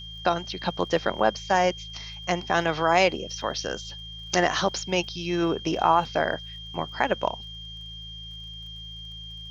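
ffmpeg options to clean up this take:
-af "adeclick=t=4,bandreject=f=54.3:t=h:w=4,bandreject=f=108.6:t=h:w=4,bandreject=f=162.9:t=h:w=4,bandreject=f=3.2k:w=30,agate=range=-21dB:threshold=-32dB"

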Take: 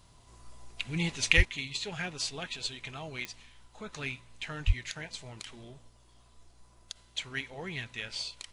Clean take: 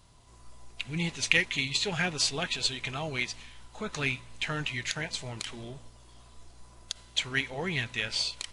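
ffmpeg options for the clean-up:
-filter_complex "[0:a]adeclick=t=4,asplit=3[a][b][c];[a]afade=t=out:st=1.36:d=0.02[d];[b]highpass=f=140:w=0.5412,highpass=f=140:w=1.3066,afade=t=in:st=1.36:d=0.02,afade=t=out:st=1.48:d=0.02[e];[c]afade=t=in:st=1.48:d=0.02[f];[d][e][f]amix=inputs=3:normalize=0,asplit=3[g][h][i];[g]afade=t=out:st=4.66:d=0.02[j];[h]highpass=f=140:w=0.5412,highpass=f=140:w=1.3066,afade=t=in:st=4.66:d=0.02,afade=t=out:st=4.78:d=0.02[k];[i]afade=t=in:st=4.78:d=0.02[l];[j][k][l]amix=inputs=3:normalize=0,asetnsamples=n=441:p=0,asendcmd='1.45 volume volume 7dB',volume=0dB"

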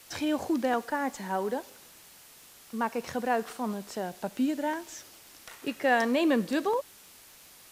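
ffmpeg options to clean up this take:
-af "adeclick=t=4,afftdn=nr=21:nf=-54"

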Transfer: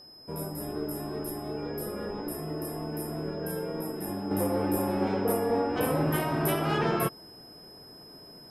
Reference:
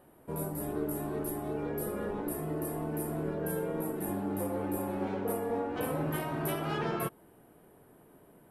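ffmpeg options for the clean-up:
-af "bandreject=f=5.1k:w=30,asetnsamples=n=441:p=0,asendcmd='4.31 volume volume -6dB',volume=0dB"

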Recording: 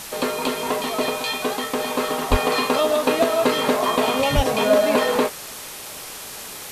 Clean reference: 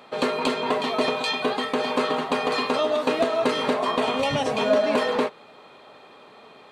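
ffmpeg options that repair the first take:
-filter_complex "[0:a]adeclick=t=4,asplit=3[a][b][c];[a]afade=t=out:st=2.3:d=0.02[d];[b]highpass=f=140:w=0.5412,highpass=f=140:w=1.3066,afade=t=in:st=2.3:d=0.02,afade=t=out:st=2.42:d=0.02[e];[c]afade=t=in:st=2.42:d=0.02[f];[d][e][f]amix=inputs=3:normalize=0,asplit=3[g][h][i];[g]afade=t=out:st=4.35:d=0.02[j];[h]highpass=f=140:w=0.5412,highpass=f=140:w=1.3066,afade=t=in:st=4.35:d=0.02,afade=t=out:st=4.47:d=0.02[k];[i]afade=t=in:st=4.47:d=0.02[l];[j][k][l]amix=inputs=3:normalize=0,afwtdn=0.02,asetnsamples=n=441:p=0,asendcmd='2.22 volume volume -3.5dB',volume=0dB"

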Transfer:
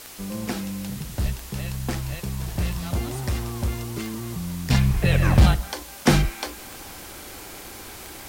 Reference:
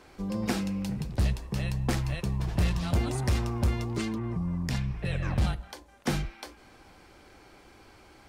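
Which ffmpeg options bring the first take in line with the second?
-filter_complex "[0:a]adeclick=t=4,asplit=3[a][b][c];[a]afade=t=out:st=1.23:d=0.02[d];[b]highpass=f=140:w=0.5412,highpass=f=140:w=1.3066,afade=t=in:st=1.23:d=0.02,afade=t=out:st=1.35:d=0.02[e];[c]afade=t=in:st=1.35:d=0.02[f];[d][e][f]amix=inputs=3:normalize=0,asplit=3[g][h][i];[g]afade=t=out:st=4.93:d=0.02[j];[h]highpass=f=140:w=0.5412,highpass=f=140:w=1.3066,afade=t=in:st=4.93:d=0.02,afade=t=out:st=5.05:d=0.02[k];[i]afade=t=in:st=5.05:d=0.02[l];[j][k][l]amix=inputs=3:normalize=0,afwtdn=0.0089,asetnsamples=n=441:p=0,asendcmd='4.7 volume volume -11.5dB',volume=0dB"

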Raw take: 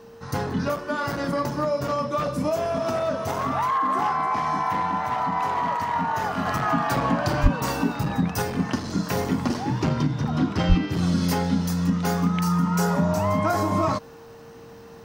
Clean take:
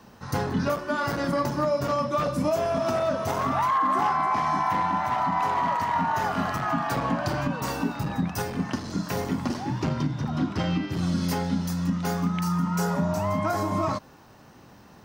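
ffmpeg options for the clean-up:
-filter_complex "[0:a]bandreject=f=460:w=30,asplit=3[a][b][c];[a]afade=t=out:st=7.42:d=0.02[d];[b]highpass=f=140:w=0.5412,highpass=f=140:w=1.3066,afade=t=in:st=7.42:d=0.02,afade=t=out:st=7.54:d=0.02[e];[c]afade=t=in:st=7.54:d=0.02[f];[d][e][f]amix=inputs=3:normalize=0,asplit=3[g][h][i];[g]afade=t=out:st=10.68:d=0.02[j];[h]highpass=f=140:w=0.5412,highpass=f=140:w=1.3066,afade=t=in:st=10.68:d=0.02,afade=t=out:st=10.8:d=0.02[k];[i]afade=t=in:st=10.8:d=0.02[l];[j][k][l]amix=inputs=3:normalize=0,asetnsamples=n=441:p=0,asendcmd='6.46 volume volume -3.5dB',volume=0dB"

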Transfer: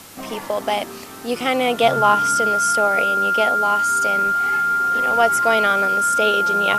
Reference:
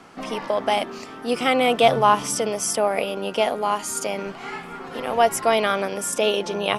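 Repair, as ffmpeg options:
-af "bandreject=f=99.3:t=h:w=4,bandreject=f=198.6:t=h:w=4,bandreject=f=297.9:t=h:w=4,bandreject=f=397.2:t=h:w=4,bandreject=f=1.4k:w=30,afwtdn=0.0089"

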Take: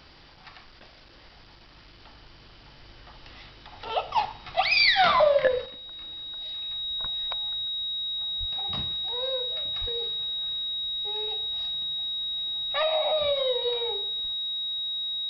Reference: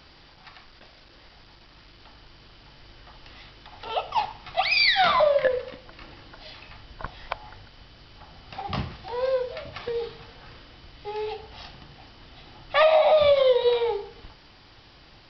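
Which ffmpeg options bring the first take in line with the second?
-filter_complex "[0:a]bandreject=f=3.8k:w=30,asplit=3[a][b][c];[a]afade=t=out:st=8.39:d=0.02[d];[b]highpass=f=140:w=0.5412,highpass=f=140:w=1.3066,afade=t=in:st=8.39:d=0.02,afade=t=out:st=8.51:d=0.02[e];[c]afade=t=in:st=8.51:d=0.02[f];[d][e][f]amix=inputs=3:normalize=0,asplit=3[g][h][i];[g]afade=t=out:st=9.8:d=0.02[j];[h]highpass=f=140:w=0.5412,highpass=f=140:w=1.3066,afade=t=in:st=9.8:d=0.02,afade=t=out:st=9.92:d=0.02[k];[i]afade=t=in:st=9.92:d=0.02[l];[j][k][l]amix=inputs=3:normalize=0,asetnsamples=n=441:p=0,asendcmd='5.66 volume volume 8.5dB',volume=0dB"

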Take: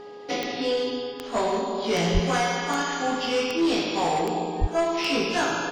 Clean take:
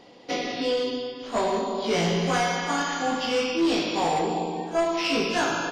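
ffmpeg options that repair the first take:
-filter_complex "[0:a]adeclick=t=4,bandreject=f=413.4:t=h:w=4,bandreject=f=826.8:t=h:w=4,bandreject=f=1.2402k:t=h:w=4,bandreject=f=1.6536k:t=h:w=4,asplit=3[a][b][c];[a]afade=t=out:st=2.13:d=0.02[d];[b]highpass=f=140:w=0.5412,highpass=f=140:w=1.3066,afade=t=in:st=2.13:d=0.02,afade=t=out:st=2.25:d=0.02[e];[c]afade=t=in:st=2.25:d=0.02[f];[d][e][f]amix=inputs=3:normalize=0,asplit=3[g][h][i];[g]afade=t=out:st=4.6:d=0.02[j];[h]highpass=f=140:w=0.5412,highpass=f=140:w=1.3066,afade=t=in:st=4.6:d=0.02,afade=t=out:st=4.72:d=0.02[k];[i]afade=t=in:st=4.72:d=0.02[l];[j][k][l]amix=inputs=3:normalize=0"

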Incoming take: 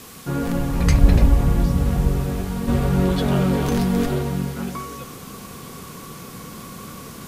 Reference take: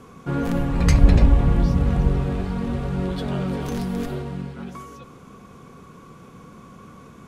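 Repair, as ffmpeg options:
-af "afwtdn=0.0079,asetnsamples=n=441:p=0,asendcmd='2.68 volume volume -6.5dB',volume=0dB"

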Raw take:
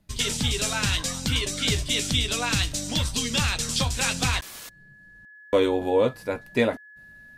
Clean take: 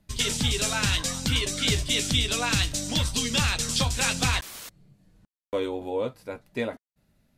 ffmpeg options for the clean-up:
-af "bandreject=f=1.7k:w=30,asetnsamples=n=441:p=0,asendcmd='5.35 volume volume -7.5dB',volume=0dB"

